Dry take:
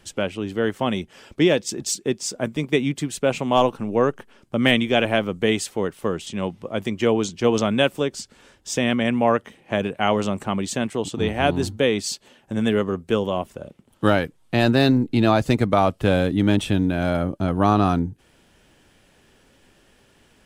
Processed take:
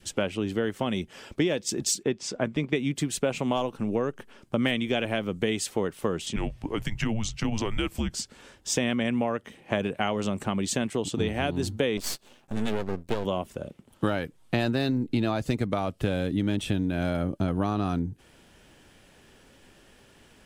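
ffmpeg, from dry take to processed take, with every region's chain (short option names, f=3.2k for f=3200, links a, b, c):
-filter_complex "[0:a]asettb=1/sr,asplit=3[a][b][c];[a]atrim=end=2.034[d];[b]atrim=start=2.03:end=2.76,asetpts=PTS-STARTPTS,afade=t=in:d=0.004:c=qsin,afade=t=out:st=0.726:d=0.004:c=qsin,lowpass=2.4k,aemphasis=mode=production:type=75kf[e];[c]atrim=start=2.756[f];[d][e]acrossfade=d=0.004:c1=hsin:c2=qsin[g];[g][f]acrossfade=d=0.004:c1=qsin:c2=hsin,asettb=1/sr,asplit=3[h][i][j];[h]atrim=end=6.364[k];[i]atrim=start=6.36:end=8.14,asetpts=PTS-STARTPTS,afade=t=in:d=0.004:c=qsin,afade=t=out:st=1.776:d=0.004:c=qsin,afreqshift=-220,acompressor=threshold=-25dB:ratio=2.5:attack=3.2:release=140:knee=1:detection=peak[l];[j]atrim=start=8.136[m];[k][l]acrossfade=d=0.004:c1=hsin:c2=qsin[n];[n][m]acrossfade=d=0.004:c1=qsin:c2=hsin,asettb=1/sr,asplit=3[o][p][q];[o]atrim=end=11.974[r];[p]atrim=start=11.97:end=13.25,asetpts=PTS-STARTPTS,afade=t=in:d=0.004:c=qsin,afade=t=out:st=1.276:d=0.004:c=qsin,equalizer=f=1.9k:t=o:w=0.22:g=-12,aeval=exprs='max(val(0),0)':c=same[s];[q]atrim=start=13.246[t];[r][s]acrossfade=d=0.004:c1=hsin:c2=qsin[u];[u][t]acrossfade=d=0.004:c1=qsin:c2=hsin,acompressor=threshold=-23dB:ratio=6,adynamicequalizer=threshold=0.00891:dfrequency=930:dqfactor=0.9:tfrequency=930:tqfactor=0.9:attack=5:release=100:ratio=0.375:range=2.5:mode=cutabove:tftype=bell,volume=1dB"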